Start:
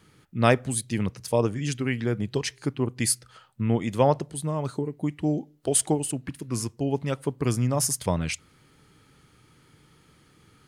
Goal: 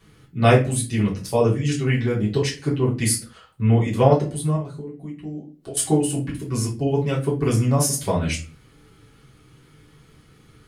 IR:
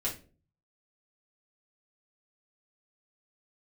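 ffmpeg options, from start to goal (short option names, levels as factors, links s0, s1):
-filter_complex "[0:a]asettb=1/sr,asplit=3[s0][s1][s2];[s0]atrim=end=4.554[s3];[s1]atrim=start=4.55:end=5.77,asetpts=PTS-STARTPTS,afade=t=in:d=0.004:c=qsin,afade=t=out:st=1.216:d=0.004:c=qsin,acompressor=threshold=0.00631:ratio=2.5[s4];[s2]atrim=start=5.766[s5];[s3][s4]acrossfade=d=0.004:c1=hsin:c2=qsin[s6];[s6][s5]acrossfade=d=0.004:c1=qsin:c2=hsin[s7];[1:a]atrim=start_sample=2205,afade=t=out:st=0.35:d=0.01,atrim=end_sample=15876[s8];[s7][s8]afir=irnorm=-1:irlink=0"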